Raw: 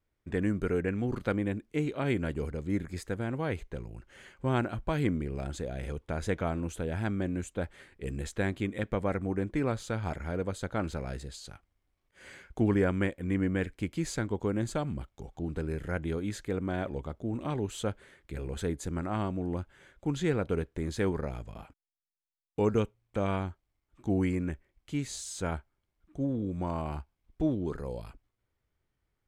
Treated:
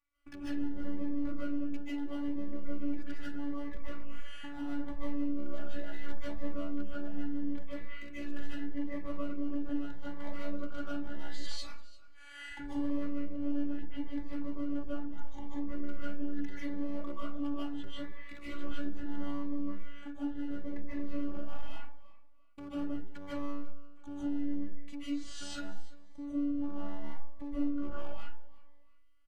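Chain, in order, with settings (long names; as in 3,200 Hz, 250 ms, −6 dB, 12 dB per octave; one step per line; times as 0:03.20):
noise gate −48 dBFS, range −6 dB
treble cut that deepens with the level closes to 470 Hz, closed at −29 dBFS
octave-band graphic EQ 125/500/1,000/2,000 Hz −9/−11/+11/+8 dB
downward compressor 1.5 to 1, threshold −44 dBFS, peak gain reduction 6 dB
hard clipping −38 dBFS, distortion −11 dB
phases set to zero 287 Hz
repeating echo 344 ms, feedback 25%, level −19.5 dB
comb and all-pass reverb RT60 0.41 s, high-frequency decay 0.55×, pre-delay 110 ms, DRR −9 dB
phaser whose notches keep moving one way rising 0.76 Hz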